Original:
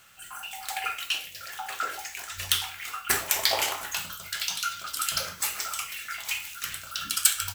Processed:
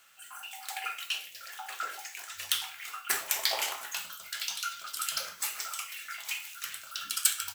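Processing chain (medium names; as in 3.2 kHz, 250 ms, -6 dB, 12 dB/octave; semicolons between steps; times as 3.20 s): high-pass 590 Hz 6 dB/octave; trim -4.5 dB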